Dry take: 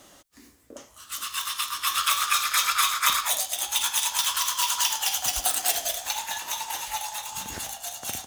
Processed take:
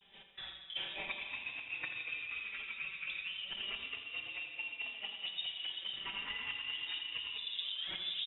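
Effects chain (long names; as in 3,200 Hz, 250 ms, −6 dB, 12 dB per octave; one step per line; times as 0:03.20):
turntable brake at the end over 0.70 s
camcorder AGC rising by 16 dB per second
treble cut that deepens with the level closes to 430 Hz, closed at −21 dBFS
noise gate −49 dBFS, range −15 dB
comb filter 5.2 ms, depth 95%
reversed playback
downward compressor, threshold −39 dBFS, peak gain reduction 15.5 dB
reversed playback
pitch vibrato 0.4 Hz 42 cents
repeating echo 83 ms, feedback 54%, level −9.5 dB
comb and all-pass reverb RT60 2.8 s, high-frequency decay 0.55×, pre-delay 10 ms, DRR 7.5 dB
voice inversion scrambler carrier 3,700 Hz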